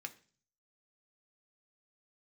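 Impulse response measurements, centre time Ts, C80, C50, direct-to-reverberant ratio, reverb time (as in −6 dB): 5 ms, 21.0 dB, 17.0 dB, 6.0 dB, 0.40 s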